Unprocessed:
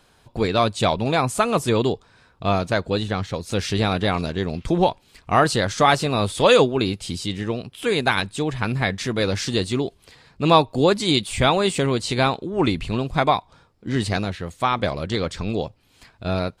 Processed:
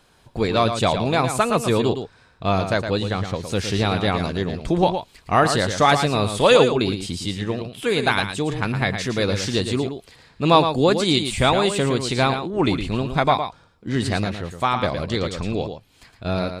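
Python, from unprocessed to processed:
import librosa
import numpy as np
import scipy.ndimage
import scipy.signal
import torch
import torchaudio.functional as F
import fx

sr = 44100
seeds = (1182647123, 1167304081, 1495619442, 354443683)

y = x + 10.0 ** (-8.0 / 20.0) * np.pad(x, (int(113 * sr / 1000.0), 0))[:len(x)]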